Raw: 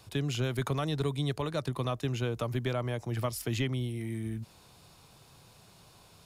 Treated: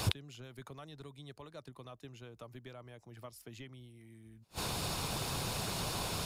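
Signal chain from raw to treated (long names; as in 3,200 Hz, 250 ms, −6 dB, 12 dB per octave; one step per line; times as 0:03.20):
gate with flip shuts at −36 dBFS, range −38 dB
harmonic and percussive parts rebalanced percussive +5 dB
level +17.5 dB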